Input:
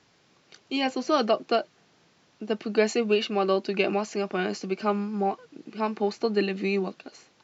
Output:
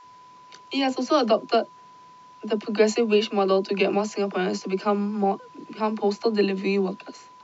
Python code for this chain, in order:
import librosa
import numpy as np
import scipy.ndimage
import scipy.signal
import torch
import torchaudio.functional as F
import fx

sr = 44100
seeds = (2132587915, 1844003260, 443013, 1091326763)

y = fx.dynamic_eq(x, sr, hz=1900.0, q=1.1, threshold_db=-42.0, ratio=4.0, max_db=-4)
y = fx.dispersion(y, sr, late='lows', ms=48.0, hz=330.0)
y = y + 10.0 ** (-50.0 / 20.0) * np.sin(2.0 * np.pi * 1000.0 * np.arange(len(y)) / sr)
y = y * 10.0 ** (3.5 / 20.0)